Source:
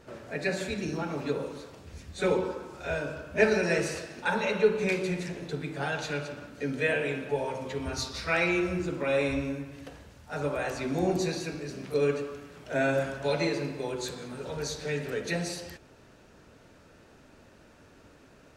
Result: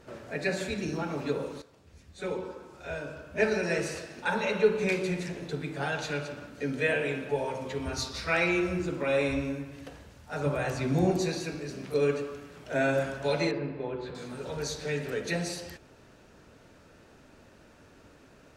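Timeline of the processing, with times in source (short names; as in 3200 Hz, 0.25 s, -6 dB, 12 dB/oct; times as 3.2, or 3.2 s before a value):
1.62–4.73 fade in, from -12 dB
10.46–11.11 bell 130 Hz +10 dB 0.94 oct
13.51–14.15 air absorption 420 m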